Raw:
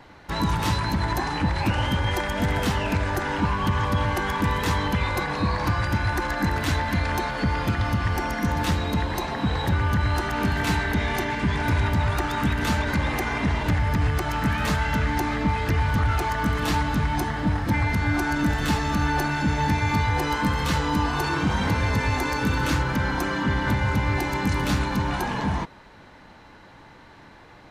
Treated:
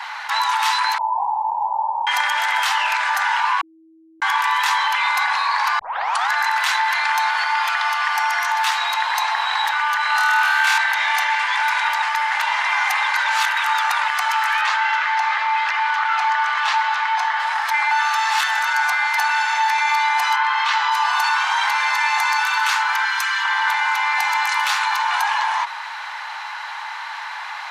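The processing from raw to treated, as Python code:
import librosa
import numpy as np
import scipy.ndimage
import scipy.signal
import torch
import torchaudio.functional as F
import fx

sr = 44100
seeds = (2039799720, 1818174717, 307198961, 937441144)

y = fx.steep_lowpass(x, sr, hz=1000.0, slope=96, at=(0.98, 2.07))
y = fx.room_flutter(y, sr, wall_m=4.5, rt60_s=0.62, at=(10.07, 10.78))
y = fx.air_absorb(y, sr, metres=100.0, at=(14.61, 17.4))
y = fx.lowpass(y, sr, hz=fx.line((20.35, 3100.0), (20.9, 5300.0)), slope=12, at=(20.35, 20.9), fade=0.02)
y = fx.highpass(y, sr, hz=1500.0, slope=12, at=(23.05, 23.45))
y = fx.edit(y, sr, fx.bleep(start_s=3.61, length_s=0.61, hz=323.0, db=-7.5),
    fx.tape_start(start_s=5.79, length_s=0.51),
    fx.reverse_span(start_s=12.02, length_s=2.06),
    fx.reverse_span(start_s=17.91, length_s=1.27), tone=tone)
y = scipy.signal.sosfilt(scipy.signal.ellip(4, 1.0, 60, 860.0, 'highpass', fs=sr, output='sos'), y)
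y = fx.high_shelf(y, sr, hz=9000.0, db=-7.0)
y = fx.env_flatten(y, sr, amount_pct=50)
y = F.gain(torch.from_numpy(y), 7.0).numpy()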